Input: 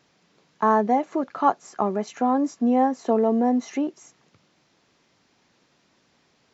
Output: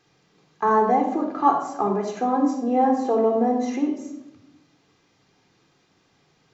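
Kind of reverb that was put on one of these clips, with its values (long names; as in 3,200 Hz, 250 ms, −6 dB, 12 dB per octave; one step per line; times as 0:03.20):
rectangular room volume 2,400 cubic metres, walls furnished, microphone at 3.8 metres
level −3 dB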